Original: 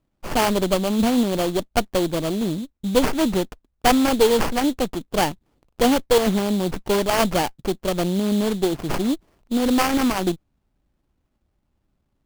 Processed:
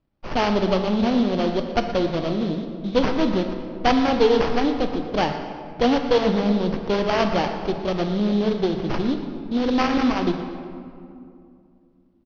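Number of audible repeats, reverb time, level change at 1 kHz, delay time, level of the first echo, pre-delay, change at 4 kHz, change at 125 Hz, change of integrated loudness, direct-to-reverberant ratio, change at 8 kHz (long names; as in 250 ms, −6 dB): 1, 2.5 s, −0.5 dB, 119 ms, −14.0 dB, 17 ms, −2.5 dB, 0.0 dB, −0.5 dB, 5.5 dB, below −10 dB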